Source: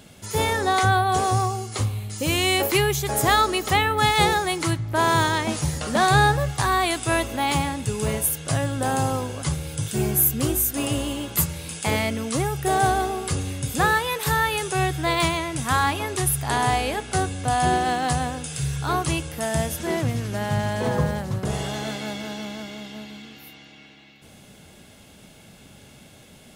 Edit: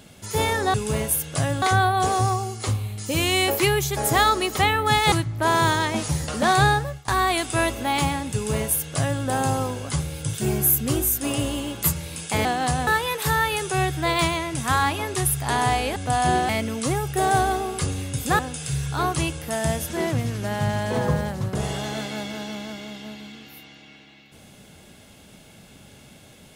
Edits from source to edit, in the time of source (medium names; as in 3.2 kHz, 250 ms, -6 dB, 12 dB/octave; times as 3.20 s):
4.24–4.65 s: delete
6.13–6.61 s: fade out, to -22.5 dB
7.87–8.75 s: copy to 0.74 s
11.98–13.88 s: swap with 17.87–18.29 s
16.97–17.34 s: delete